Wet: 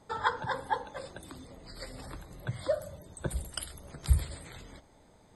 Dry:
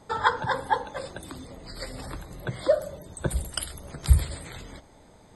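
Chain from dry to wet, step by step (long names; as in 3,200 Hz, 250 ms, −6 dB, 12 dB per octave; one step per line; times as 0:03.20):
0:02.46–0:03.01: graphic EQ with 15 bands 100 Hz +9 dB, 400 Hz −7 dB, 10,000 Hz +4 dB
level −6.5 dB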